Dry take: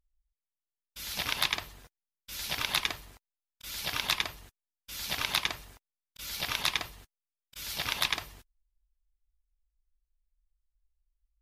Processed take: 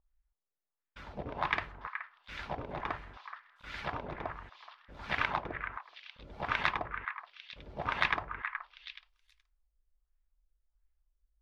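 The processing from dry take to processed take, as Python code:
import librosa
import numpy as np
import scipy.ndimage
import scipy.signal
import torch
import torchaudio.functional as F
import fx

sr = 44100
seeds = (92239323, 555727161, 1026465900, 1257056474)

y = fx.filter_lfo_lowpass(x, sr, shape='sine', hz=1.4, low_hz=480.0, high_hz=1900.0, q=1.8)
y = fx.echo_stepped(y, sr, ms=424, hz=1500.0, octaves=1.4, feedback_pct=70, wet_db=-6.0)
y = y * 10.0 ** (1.5 / 20.0)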